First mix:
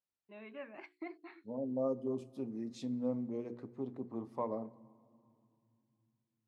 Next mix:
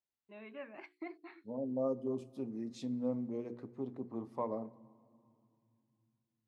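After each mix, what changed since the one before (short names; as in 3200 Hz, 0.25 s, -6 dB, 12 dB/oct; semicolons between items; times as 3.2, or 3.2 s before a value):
none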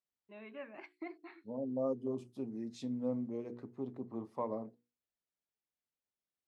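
reverb: off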